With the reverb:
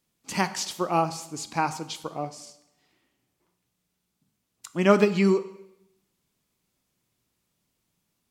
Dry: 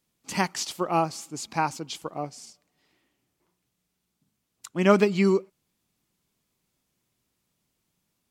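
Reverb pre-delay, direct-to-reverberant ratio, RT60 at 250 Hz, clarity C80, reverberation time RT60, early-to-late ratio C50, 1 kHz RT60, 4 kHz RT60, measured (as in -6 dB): 6 ms, 11.0 dB, 0.85 s, 17.0 dB, 0.85 s, 14.5 dB, 0.85 s, 0.80 s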